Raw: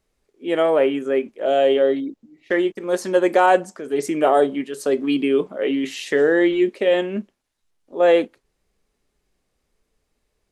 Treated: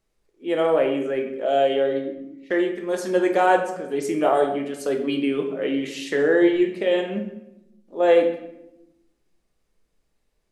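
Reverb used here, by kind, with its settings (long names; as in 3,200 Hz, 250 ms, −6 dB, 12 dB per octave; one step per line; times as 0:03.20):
rectangular room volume 280 cubic metres, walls mixed, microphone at 0.74 metres
level −4 dB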